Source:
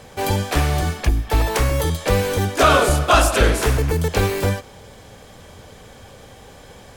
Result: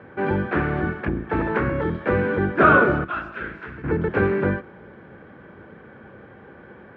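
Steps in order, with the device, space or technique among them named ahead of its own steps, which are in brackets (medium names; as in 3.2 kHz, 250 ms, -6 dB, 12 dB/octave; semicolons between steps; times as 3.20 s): 3.04–3.84 s: amplifier tone stack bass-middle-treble 5-5-5; sub-octave bass pedal (octave divider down 1 oct, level 0 dB; cabinet simulation 78–2100 Hz, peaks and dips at 78 Hz -7 dB, 110 Hz -5 dB, 210 Hz +5 dB, 350 Hz +9 dB, 710 Hz -4 dB, 1.5 kHz +9 dB); trim -3 dB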